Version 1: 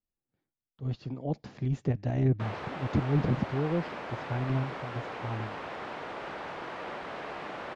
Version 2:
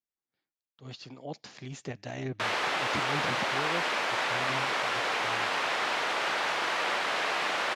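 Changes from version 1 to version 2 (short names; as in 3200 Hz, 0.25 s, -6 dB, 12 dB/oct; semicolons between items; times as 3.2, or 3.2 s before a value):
background +9.0 dB; master: add tilt +4.5 dB/oct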